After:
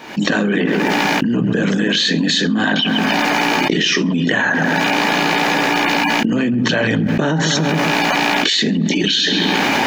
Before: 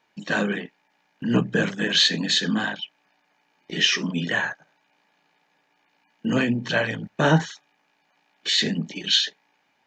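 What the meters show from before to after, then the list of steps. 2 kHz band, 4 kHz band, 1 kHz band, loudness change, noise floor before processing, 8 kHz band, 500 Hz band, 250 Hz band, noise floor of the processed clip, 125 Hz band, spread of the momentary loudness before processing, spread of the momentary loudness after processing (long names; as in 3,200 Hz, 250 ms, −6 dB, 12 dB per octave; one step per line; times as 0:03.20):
+10.5 dB, +6.5 dB, +15.0 dB, +7.5 dB, −69 dBFS, +8.0 dB, +9.5 dB, +11.0 dB, −18 dBFS, +7.5 dB, 14 LU, 2 LU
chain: camcorder AGC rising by 57 dB per second
parametric band 280 Hz +7 dB 1.3 octaves
on a send: feedback echo with a low-pass in the loop 135 ms, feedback 61%, low-pass 3,300 Hz, level −19 dB
on the sum: envelope flattener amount 100%
level −11 dB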